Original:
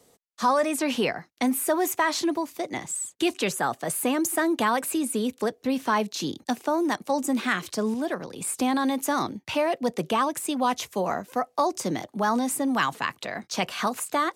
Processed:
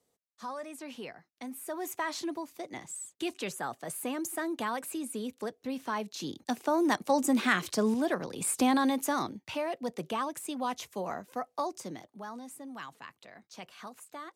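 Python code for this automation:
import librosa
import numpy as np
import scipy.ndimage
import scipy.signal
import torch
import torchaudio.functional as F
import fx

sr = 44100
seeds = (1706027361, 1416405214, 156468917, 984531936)

y = fx.gain(x, sr, db=fx.line((1.48, -17.5), (1.97, -10.0), (6.04, -10.0), (6.92, -1.0), (8.71, -1.0), (9.58, -9.0), (11.6, -9.0), (12.32, -19.0)))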